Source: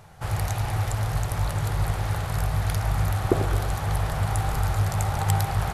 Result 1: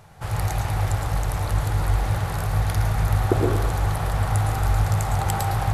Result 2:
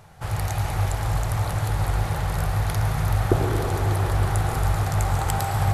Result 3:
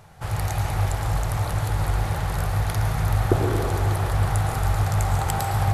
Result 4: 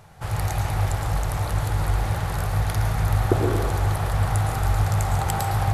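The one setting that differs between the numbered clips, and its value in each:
plate-style reverb, RT60: 0.53 s, 5.3 s, 2.5 s, 1.2 s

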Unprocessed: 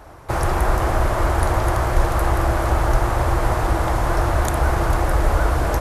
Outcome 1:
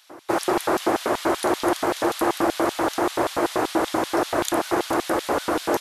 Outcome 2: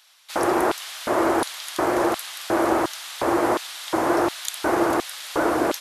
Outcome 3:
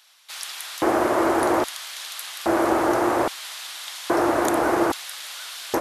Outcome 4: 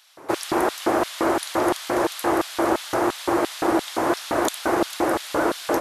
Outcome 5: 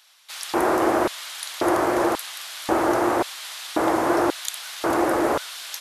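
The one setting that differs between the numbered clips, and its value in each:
LFO high-pass, rate: 5.2 Hz, 1.4 Hz, 0.61 Hz, 2.9 Hz, 0.93 Hz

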